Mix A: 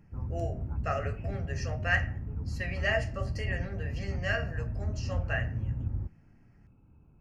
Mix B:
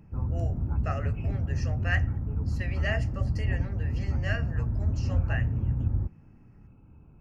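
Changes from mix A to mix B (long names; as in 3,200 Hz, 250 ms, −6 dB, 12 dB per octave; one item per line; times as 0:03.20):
speech: send −11.0 dB
background +6.0 dB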